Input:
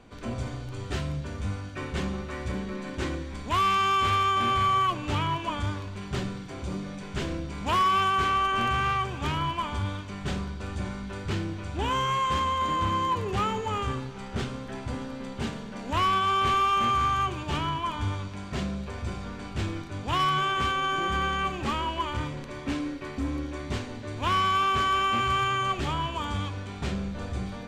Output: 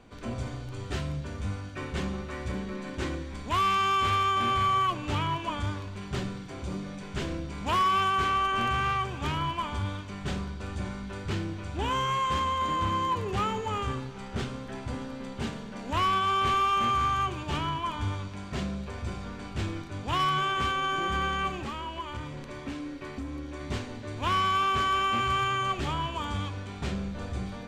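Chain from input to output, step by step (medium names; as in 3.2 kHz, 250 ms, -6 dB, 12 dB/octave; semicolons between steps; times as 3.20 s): 21.59–23.61 s: compression 3:1, threshold -33 dBFS, peak gain reduction 7 dB; trim -1.5 dB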